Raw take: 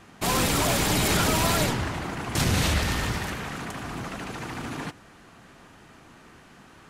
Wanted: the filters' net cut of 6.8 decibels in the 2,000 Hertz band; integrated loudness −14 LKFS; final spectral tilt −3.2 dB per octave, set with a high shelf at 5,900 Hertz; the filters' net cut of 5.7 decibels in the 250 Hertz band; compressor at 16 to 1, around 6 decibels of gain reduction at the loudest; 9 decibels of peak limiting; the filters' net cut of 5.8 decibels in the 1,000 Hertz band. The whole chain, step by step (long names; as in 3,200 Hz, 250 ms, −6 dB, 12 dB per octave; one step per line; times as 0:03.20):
parametric band 250 Hz −8 dB
parametric band 1,000 Hz −5 dB
parametric band 2,000 Hz −8 dB
high-shelf EQ 5,900 Hz +6.5 dB
downward compressor 16 to 1, threshold −26 dBFS
level +20.5 dB
brickwall limiter −4.5 dBFS